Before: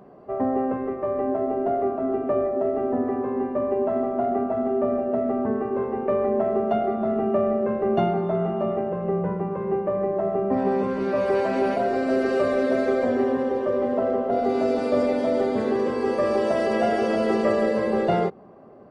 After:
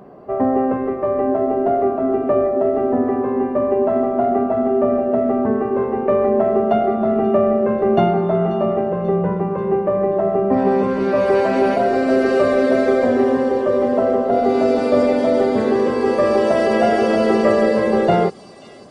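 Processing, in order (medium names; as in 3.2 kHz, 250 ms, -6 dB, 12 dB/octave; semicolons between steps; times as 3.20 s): feedback echo behind a high-pass 536 ms, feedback 63%, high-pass 4.7 kHz, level -8 dB; trim +6.5 dB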